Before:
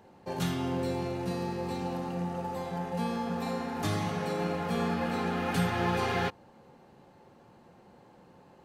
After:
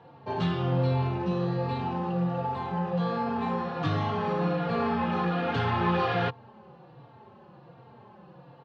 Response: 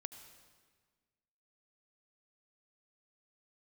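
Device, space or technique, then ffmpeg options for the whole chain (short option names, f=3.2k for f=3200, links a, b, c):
barber-pole flanger into a guitar amplifier: -filter_complex "[0:a]asplit=2[a][b];[b]adelay=3.7,afreqshift=-1.3[c];[a][c]amix=inputs=2:normalize=1,asoftclip=type=tanh:threshold=-27dB,highpass=93,equalizer=f=130:t=q:w=4:g=10,equalizer=f=270:t=q:w=4:g=-5,equalizer=f=1.1k:t=q:w=4:g=4,equalizer=f=2.1k:t=q:w=4:g=-5,lowpass=f=3.9k:w=0.5412,lowpass=f=3.9k:w=1.3066,volume=7.5dB"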